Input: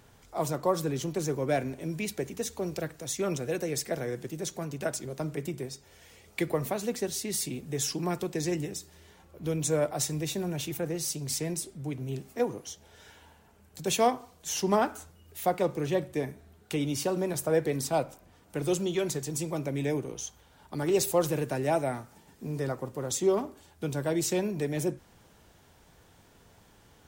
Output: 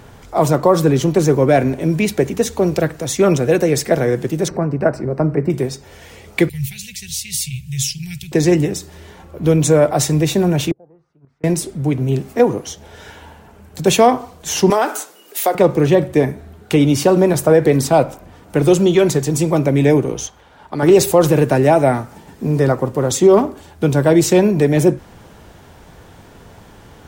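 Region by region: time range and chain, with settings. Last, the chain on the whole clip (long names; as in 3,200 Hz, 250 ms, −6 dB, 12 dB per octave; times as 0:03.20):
0:04.48–0:05.50: moving average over 13 samples + upward compression, threshold −38 dBFS
0:06.49–0:08.32: elliptic band-stop filter 130–2,500 Hz + upward compression, threshold −54 dBFS
0:10.71–0:11.44: gate with flip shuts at −29 dBFS, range −35 dB + envelope-controlled low-pass 360–1,600 Hz down, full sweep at −44 dBFS
0:14.70–0:15.55: high-pass filter 310 Hz 24 dB per octave + high-shelf EQ 3,000 Hz +10.5 dB + downward compressor, threshold −27 dBFS
0:20.27–0:20.83: low-pass filter 3,400 Hz 6 dB per octave + low-shelf EQ 320 Hz −10 dB
whole clip: high-shelf EQ 2,800 Hz −8 dB; boost into a limiter +18.5 dB; level −1 dB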